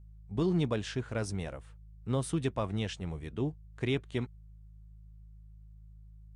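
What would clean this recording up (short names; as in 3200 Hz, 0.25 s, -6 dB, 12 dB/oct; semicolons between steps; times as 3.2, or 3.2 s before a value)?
de-hum 52.9 Hz, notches 3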